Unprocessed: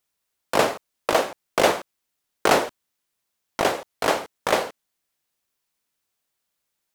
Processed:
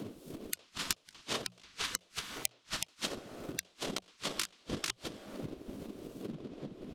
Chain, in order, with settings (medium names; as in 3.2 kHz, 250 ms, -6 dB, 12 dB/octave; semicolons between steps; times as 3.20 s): wind noise 150 Hz -33 dBFS; resonant high shelf 2.4 kHz +9 dB, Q 1.5; on a send: delay 373 ms -6.5 dB; on the sum: plate-style reverb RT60 1.7 s, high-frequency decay 0.55×, DRR 14 dB; low-pass that closes with the level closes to 2.4 kHz, closed at -7 dBFS; inverted gate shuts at -11 dBFS, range -37 dB; transient shaper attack +11 dB, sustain -1 dB; compression 8:1, threshold -40 dBFS, peak gain reduction 27.5 dB; hum notches 60/120/180 Hz; spectral gate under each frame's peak -10 dB weak; peaking EQ 840 Hz -7 dB 0.5 oct; trim +12 dB